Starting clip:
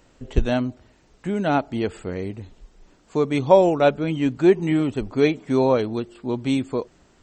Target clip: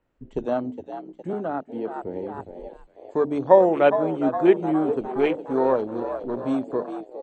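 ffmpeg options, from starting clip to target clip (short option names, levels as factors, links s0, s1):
-filter_complex "[0:a]asettb=1/sr,asplit=3[s0][s1][s2];[s0]atrim=end=5.024[s3];[s1]atrim=start=5.02:end=6.38,asetpts=PTS-STARTPTS,afade=t=in:d=0.004:c=qsin,afade=t=out:st=1.356:d=0.004:c=qsin,aeval=exprs='if(lt(val(0),0),0.447*val(0),val(0))':c=same[s4];[s2]atrim=start=6.376[s5];[s3][s4]acrossfade=d=0.004:c1=hsin:c2=qsin[s6];[s6][s5]acrossfade=d=0.004:c1=qsin:c2=hsin,acrossover=split=220|2700[s7][s8][s9];[s7]acompressor=threshold=0.00794:ratio=6[s10];[s9]agate=range=0.0224:threshold=0.00126:ratio=3:detection=peak[s11];[s10][s8][s11]amix=inputs=3:normalize=0,bandreject=f=49.45:t=h:w=4,bandreject=f=98.9:t=h:w=4,bandreject=f=148.35:t=h:w=4,bandreject=f=197.8:t=h:w=4,bandreject=f=247.25:t=h:w=4,bandreject=f=296.7:t=h:w=4,bandreject=f=346.15:t=h:w=4,asplit=8[s12][s13][s14][s15][s16][s17][s18][s19];[s13]adelay=412,afreqshift=66,volume=0.316[s20];[s14]adelay=824,afreqshift=132,volume=0.191[s21];[s15]adelay=1236,afreqshift=198,volume=0.114[s22];[s16]adelay=1648,afreqshift=264,volume=0.0684[s23];[s17]adelay=2060,afreqshift=330,volume=0.0412[s24];[s18]adelay=2472,afreqshift=396,volume=0.0245[s25];[s19]adelay=2884,afreqshift=462,volume=0.0148[s26];[s12][s20][s21][s22][s23][s24][s25][s26]amix=inputs=8:normalize=0,asettb=1/sr,asplit=3[s27][s28][s29];[s27]atrim=end=1.334[s30];[s28]atrim=start=1.33:end=2.4,asetpts=PTS-STARTPTS,afade=t=in:d=0.004:c=qsin,afade=t=out:st=1.066:d=0.004:c=qsin,acrossover=split=220|3600[s31][s32][s33];[s31]acompressor=threshold=0.01:ratio=4[s34];[s32]acompressor=threshold=0.0501:ratio=4[s35];[s33]acompressor=threshold=0.00112:ratio=4[s36];[s34][s35][s36]amix=inputs=3:normalize=0[s37];[s29]atrim=start=2.396[s38];[s30][s37]acrossfade=d=0.004:c1=hsin:c2=qsin[s39];[s39][s38]acrossfade=d=0.004:c1=qsin:c2=hsin,afwtdn=0.0316"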